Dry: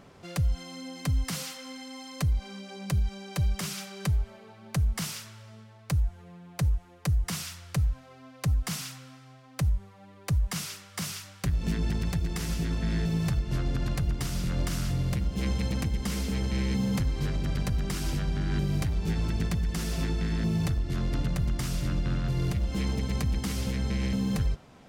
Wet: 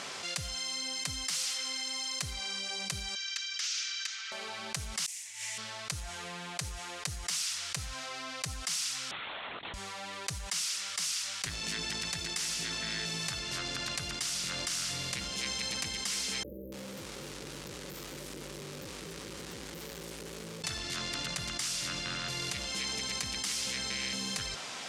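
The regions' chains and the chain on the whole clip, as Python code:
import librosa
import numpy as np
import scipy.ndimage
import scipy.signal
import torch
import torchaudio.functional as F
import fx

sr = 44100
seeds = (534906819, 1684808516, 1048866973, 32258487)

y = fx.chain(x, sr, fx.ellip_bandpass(low_hz=1400.0, high_hz=6400.0, order=3, stop_db=50),
    fx.overload_stage(gain_db=34.0), at=(3.15, 4.32))
y = fx.chain(y, sr, fx.curve_eq(hz=(110.0, 170.0, 300.0, 520.0, 870.0, 1300.0, 2000.0, 3200.0, 4800.0, 6900.0), db=(0, -18, -5, -11, 6, -11, 12, 3, 1, 13)),
    fx.gate_flip(shuts_db=-32.0, range_db=-35), at=(5.06, 5.58))
y = fx.chain(y, sr, fx.highpass(hz=230.0, slope=24),
    fx.over_compress(threshold_db=-48.0, ratio=-0.5),
    fx.lpc_vocoder(seeds[0], excitation='whisper', order=10), at=(9.11, 9.74))
y = fx.chain(y, sr, fx.tube_stage(drive_db=47.0, bias=0.35),
    fx.brickwall_bandstop(low_hz=600.0, high_hz=13000.0),
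    fx.echo_crushed(ms=287, feedback_pct=35, bits=9, wet_db=-10.0), at=(16.43, 20.64))
y = fx.weighting(y, sr, curve='ITU-R 468')
y = fx.env_flatten(y, sr, amount_pct=70)
y = y * 10.0 ** (-8.5 / 20.0)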